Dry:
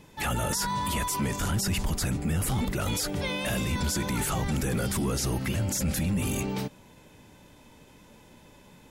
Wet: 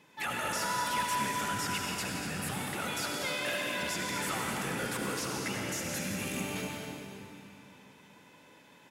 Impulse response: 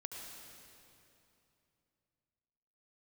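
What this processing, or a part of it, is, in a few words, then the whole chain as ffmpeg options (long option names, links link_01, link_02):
stadium PA: -filter_complex "[0:a]asettb=1/sr,asplit=3[link_01][link_02][link_03];[link_01]atrim=end=2.564[link_04];[link_02]atrim=start=2.56:end=3.79,asetpts=PTS-STARTPTS,afade=type=in:duration=0.004:curve=qsin,afade=type=out:start_time=1.226:duration=0.004:curve=qsin,highpass=230[link_05];[link_03]atrim=start=3.786[link_06];[link_04][link_05]acrossfade=duration=0.004:curve1=hsin:curve2=qsin[link_07];[link_07][link_06]acrossfade=duration=0.004:curve1=qsin:curve2=hsin,highpass=180,equalizer=frequency=1900:width_type=o:width=2.2:gain=7.5,aecho=1:1:172|242:0.316|0.355[link_08];[1:a]atrim=start_sample=2205[link_09];[link_08][link_09]afir=irnorm=-1:irlink=0,volume=-4.5dB"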